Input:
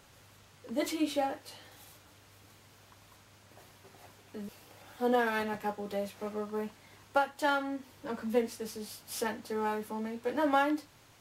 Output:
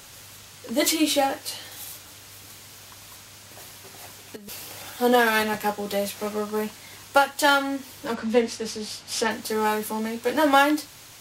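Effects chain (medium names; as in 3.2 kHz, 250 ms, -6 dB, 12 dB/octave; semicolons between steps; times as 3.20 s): treble shelf 2.6 kHz +11.5 dB; 4.36–4.90 s: compressor with a negative ratio -45 dBFS, ratio -0.5; 8.14–9.31 s: distance through air 82 m; trim +8 dB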